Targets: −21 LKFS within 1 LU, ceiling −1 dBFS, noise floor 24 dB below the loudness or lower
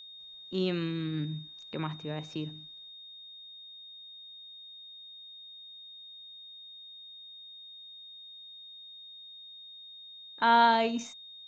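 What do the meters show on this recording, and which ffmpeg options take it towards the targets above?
interfering tone 3,700 Hz; level of the tone −46 dBFS; integrated loudness −30.0 LKFS; sample peak −11.0 dBFS; target loudness −21.0 LKFS
→ -af "bandreject=frequency=3700:width=30"
-af "volume=9dB"

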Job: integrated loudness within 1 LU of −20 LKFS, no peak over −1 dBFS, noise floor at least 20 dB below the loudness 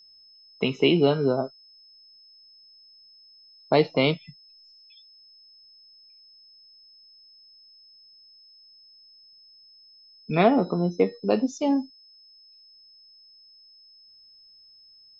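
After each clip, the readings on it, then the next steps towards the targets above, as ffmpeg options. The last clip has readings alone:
interfering tone 5,200 Hz; level of the tone −51 dBFS; integrated loudness −24.0 LKFS; sample peak −6.5 dBFS; target loudness −20.0 LKFS
→ -af "bandreject=frequency=5200:width=30"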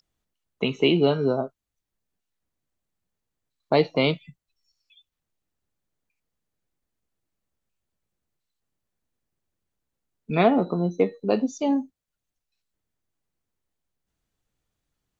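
interfering tone none found; integrated loudness −23.5 LKFS; sample peak −6.5 dBFS; target loudness −20.0 LKFS
→ -af "volume=3.5dB"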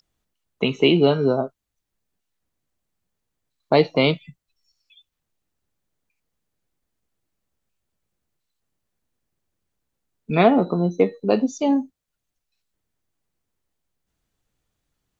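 integrated loudness −20.0 LKFS; sample peak −3.0 dBFS; background noise floor −81 dBFS

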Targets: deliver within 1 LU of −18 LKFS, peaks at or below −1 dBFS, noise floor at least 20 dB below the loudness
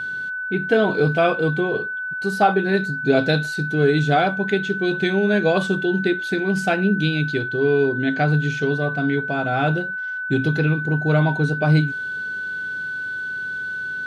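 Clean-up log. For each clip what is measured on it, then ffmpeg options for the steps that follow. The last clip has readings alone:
interfering tone 1,500 Hz; level of the tone −25 dBFS; integrated loudness −20.5 LKFS; sample peak −4.5 dBFS; target loudness −18.0 LKFS
→ -af "bandreject=frequency=1500:width=30"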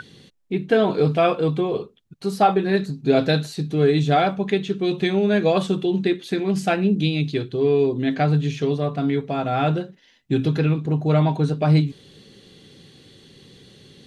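interfering tone none found; integrated loudness −21.0 LKFS; sample peak −5.5 dBFS; target loudness −18.0 LKFS
→ -af "volume=3dB"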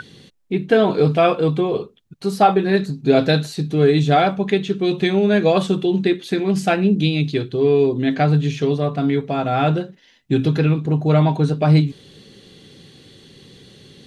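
integrated loudness −18.0 LKFS; sample peak −2.5 dBFS; background noise floor −54 dBFS

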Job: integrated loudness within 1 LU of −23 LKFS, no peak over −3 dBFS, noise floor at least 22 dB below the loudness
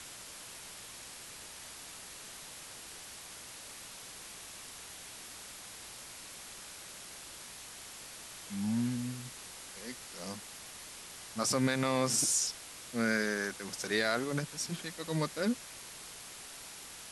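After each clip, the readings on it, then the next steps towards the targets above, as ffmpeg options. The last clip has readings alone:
mains hum 60 Hz; hum harmonics up to 180 Hz; level of the hum −70 dBFS; background noise floor −49 dBFS; target noise floor −59 dBFS; integrated loudness −37.0 LKFS; sample peak −16.5 dBFS; target loudness −23.0 LKFS
→ -af "bandreject=frequency=60:width_type=h:width=4,bandreject=frequency=120:width_type=h:width=4,bandreject=frequency=180:width_type=h:width=4"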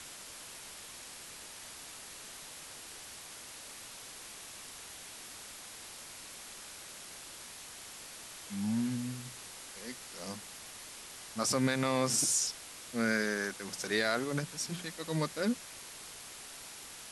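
mains hum none found; background noise floor −49 dBFS; target noise floor −59 dBFS
→ -af "afftdn=noise_reduction=10:noise_floor=-49"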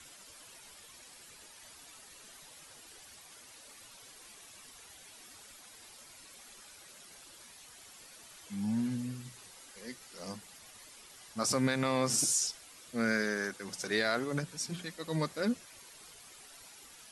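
background noise floor −55 dBFS; target noise floor −56 dBFS
→ -af "afftdn=noise_reduction=6:noise_floor=-55"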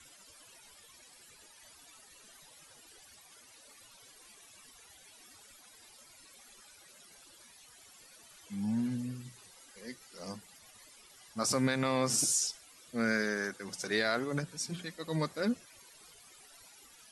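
background noise floor −58 dBFS; integrated loudness −33.5 LKFS; sample peak −16.5 dBFS; target loudness −23.0 LKFS
→ -af "volume=10.5dB"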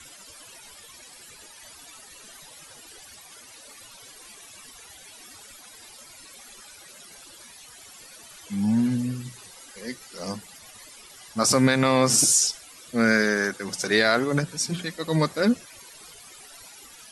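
integrated loudness −23.0 LKFS; sample peak −6.0 dBFS; background noise floor −48 dBFS

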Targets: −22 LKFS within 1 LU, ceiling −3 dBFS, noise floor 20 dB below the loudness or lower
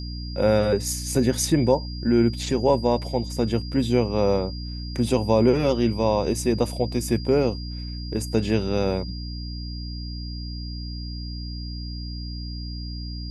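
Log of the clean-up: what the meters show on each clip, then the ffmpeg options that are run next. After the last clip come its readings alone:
mains hum 60 Hz; hum harmonics up to 300 Hz; level of the hum −30 dBFS; interfering tone 4,800 Hz; level of the tone −39 dBFS; integrated loudness −24.5 LKFS; sample peak −6.0 dBFS; target loudness −22.0 LKFS
→ -af "bandreject=frequency=60:width_type=h:width=6,bandreject=frequency=120:width_type=h:width=6,bandreject=frequency=180:width_type=h:width=6,bandreject=frequency=240:width_type=h:width=6,bandreject=frequency=300:width_type=h:width=6"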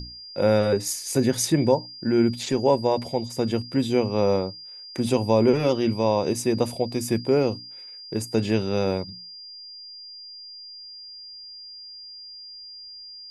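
mains hum none found; interfering tone 4,800 Hz; level of the tone −39 dBFS
→ -af "bandreject=frequency=4800:width=30"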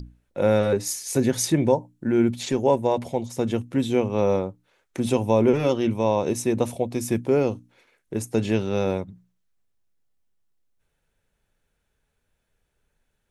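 interfering tone none found; integrated loudness −23.5 LKFS; sample peak −6.5 dBFS; target loudness −22.0 LKFS
→ -af "volume=1.5dB"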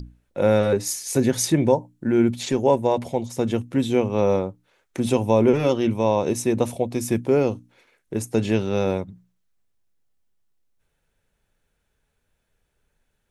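integrated loudness −22.0 LKFS; sample peak −5.0 dBFS; background noise floor −73 dBFS

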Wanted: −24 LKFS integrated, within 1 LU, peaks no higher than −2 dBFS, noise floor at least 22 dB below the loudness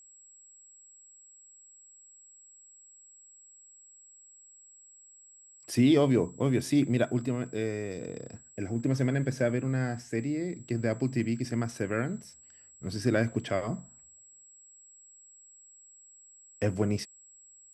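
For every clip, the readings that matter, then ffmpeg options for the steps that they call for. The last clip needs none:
interfering tone 7,700 Hz; level of the tone −53 dBFS; integrated loudness −30.0 LKFS; sample peak −12.0 dBFS; target loudness −24.0 LKFS
→ -af "bandreject=frequency=7700:width=30"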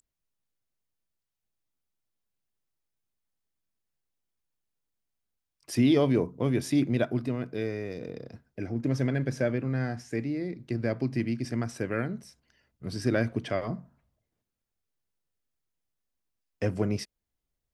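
interfering tone none found; integrated loudness −29.5 LKFS; sample peak −12.0 dBFS; target loudness −24.0 LKFS
→ -af "volume=5.5dB"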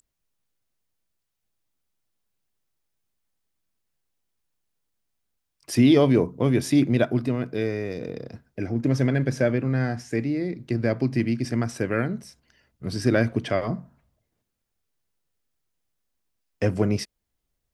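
integrated loudness −24.0 LKFS; sample peak −6.5 dBFS; background noise floor −80 dBFS

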